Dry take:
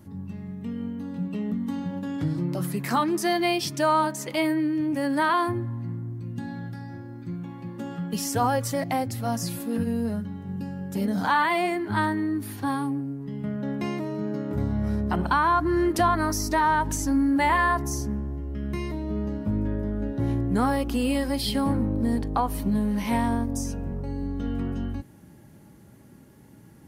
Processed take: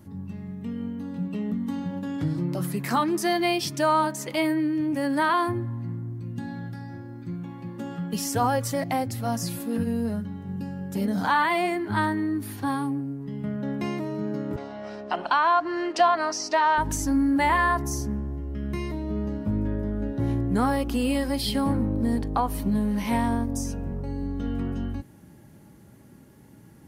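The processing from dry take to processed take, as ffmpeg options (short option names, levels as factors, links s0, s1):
-filter_complex "[0:a]asettb=1/sr,asplit=3[s0][s1][s2];[s0]atrim=end=14.564[s3];[s1]atrim=start=14.56:end=16.78,asetpts=PTS-STARTPTS,afade=t=in:d=0.004:c=qsin,afade=t=out:st=2.216:d=0.004:c=qsin,highpass=470,equalizer=f=670:t=q:w=4:g=6,equalizer=f=2800:t=q:w=4:g=8,equalizer=f=4800:t=q:w=4:g=4,lowpass=f=6800:w=0.5412,lowpass=f=6800:w=1.3066[s4];[s2]atrim=start=16.776[s5];[s3][s4]acrossfade=d=0.004:c1=hsin:c2=qsin[s6];[s6][s5]acrossfade=d=0.004:c1=qsin:c2=hsin"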